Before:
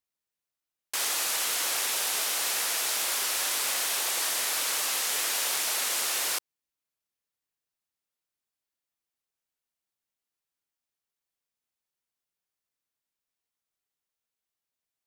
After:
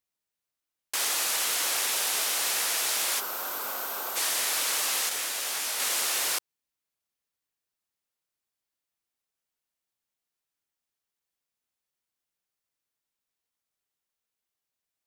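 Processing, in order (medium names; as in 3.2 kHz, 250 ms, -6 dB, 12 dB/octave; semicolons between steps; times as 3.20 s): 3.20–4.16 s: time-frequency box 1.6–12 kHz -12 dB; 5.09–5.80 s: detune thickener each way 58 cents; trim +1 dB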